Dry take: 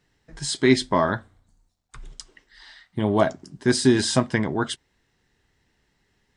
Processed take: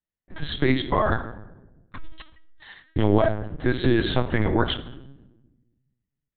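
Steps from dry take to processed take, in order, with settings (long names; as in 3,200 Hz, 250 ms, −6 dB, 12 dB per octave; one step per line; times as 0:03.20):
noise gate −46 dBFS, range −36 dB
in parallel at +2.5 dB: downward compressor 6 to 1, threshold −27 dBFS, peak gain reduction 15 dB
on the sum: brickwall limiter −10 dBFS, peak gain reduction 8 dB
convolution reverb RT60 1.0 s, pre-delay 7 ms, DRR 9 dB
linear-prediction vocoder at 8 kHz pitch kept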